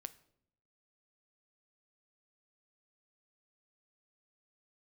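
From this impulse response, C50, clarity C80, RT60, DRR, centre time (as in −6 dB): 18.0 dB, 21.5 dB, 0.70 s, 12.5 dB, 3 ms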